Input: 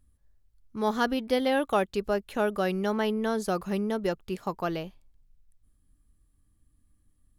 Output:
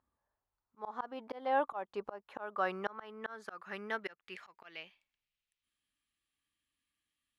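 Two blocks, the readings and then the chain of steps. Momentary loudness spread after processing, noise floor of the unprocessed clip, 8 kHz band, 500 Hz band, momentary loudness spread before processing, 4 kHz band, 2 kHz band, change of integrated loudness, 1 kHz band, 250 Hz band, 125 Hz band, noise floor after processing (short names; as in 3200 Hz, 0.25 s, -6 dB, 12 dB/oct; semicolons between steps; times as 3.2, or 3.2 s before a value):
17 LU, -67 dBFS, under -20 dB, -12.5 dB, 8 LU, -14.0 dB, -6.5 dB, -11.0 dB, -6.5 dB, -19.5 dB, under -20 dB, under -85 dBFS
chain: band-pass sweep 930 Hz -> 2800 Hz, 2.04–5.42; auto swell 0.363 s; gain +7 dB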